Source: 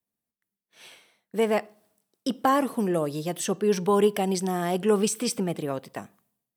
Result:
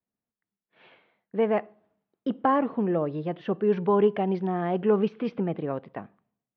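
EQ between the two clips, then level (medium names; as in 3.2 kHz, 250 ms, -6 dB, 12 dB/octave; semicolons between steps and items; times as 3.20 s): Gaussian low-pass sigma 3.5 samples; 0.0 dB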